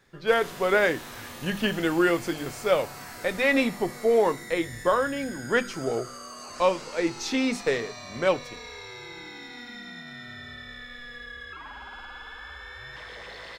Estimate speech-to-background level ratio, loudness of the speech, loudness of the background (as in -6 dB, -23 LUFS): 14.5 dB, -26.0 LUFS, -40.5 LUFS